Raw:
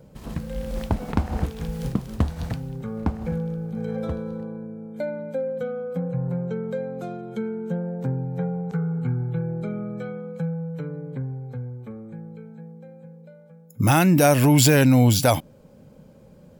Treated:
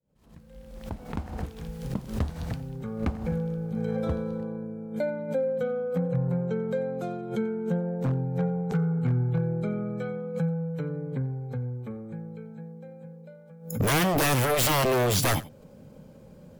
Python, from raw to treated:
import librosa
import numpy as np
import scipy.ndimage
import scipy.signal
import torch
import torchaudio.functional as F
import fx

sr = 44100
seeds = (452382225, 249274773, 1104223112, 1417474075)

y = fx.fade_in_head(x, sr, length_s=4.15)
y = 10.0 ** (-18.0 / 20.0) * (np.abs((y / 10.0 ** (-18.0 / 20.0) + 3.0) % 4.0 - 2.0) - 1.0)
y = y + 10.0 ** (-19.0 / 20.0) * np.pad(y, (int(89 * sr / 1000.0), 0))[:len(y)]
y = fx.pre_swell(y, sr, db_per_s=120.0)